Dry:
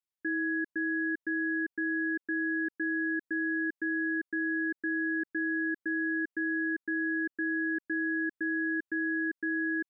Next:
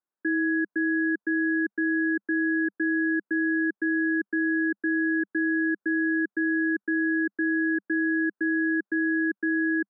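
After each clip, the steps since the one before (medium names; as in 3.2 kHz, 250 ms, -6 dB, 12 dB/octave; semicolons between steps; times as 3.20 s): Chebyshev band-pass 200–1600 Hz, order 4; trim +7.5 dB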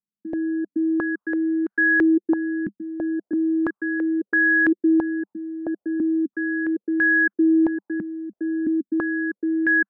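step-sequenced low-pass 3 Hz 200–1600 Hz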